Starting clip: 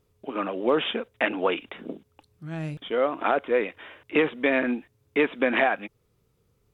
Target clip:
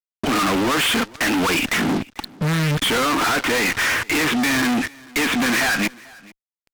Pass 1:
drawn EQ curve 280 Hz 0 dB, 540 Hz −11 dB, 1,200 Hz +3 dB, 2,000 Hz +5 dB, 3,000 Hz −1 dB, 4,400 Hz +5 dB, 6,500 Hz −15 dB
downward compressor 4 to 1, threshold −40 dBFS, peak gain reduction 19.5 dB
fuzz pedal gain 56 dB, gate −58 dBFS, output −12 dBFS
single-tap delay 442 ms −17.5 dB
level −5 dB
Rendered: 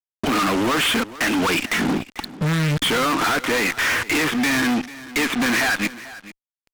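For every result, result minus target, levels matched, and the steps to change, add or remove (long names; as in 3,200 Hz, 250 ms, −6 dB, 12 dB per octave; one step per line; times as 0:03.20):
downward compressor: peak gain reduction +7 dB; echo-to-direct +6.5 dB
change: downward compressor 4 to 1, threshold −30.5 dBFS, peak gain reduction 12.5 dB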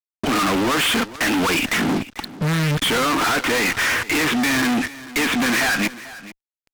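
echo-to-direct +6.5 dB
change: single-tap delay 442 ms −24 dB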